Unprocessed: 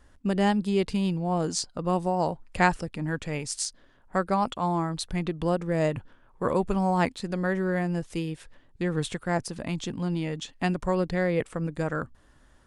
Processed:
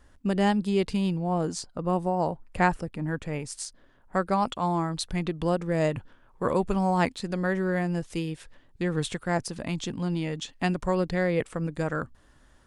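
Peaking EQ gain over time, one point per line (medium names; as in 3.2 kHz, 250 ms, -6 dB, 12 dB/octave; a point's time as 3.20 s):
peaking EQ 5.1 kHz 2.3 oct
1.00 s 0 dB
1.55 s -7 dB
3.67 s -7 dB
4.41 s +1.5 dB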